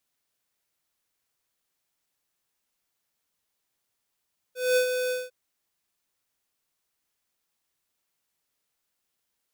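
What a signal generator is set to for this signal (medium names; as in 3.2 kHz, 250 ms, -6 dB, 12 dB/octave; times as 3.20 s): ADSR square 503 Hz, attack 213 ms, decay 95 ms, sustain -7 dB, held 0.56 s, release 192 ms -20.5 dBFS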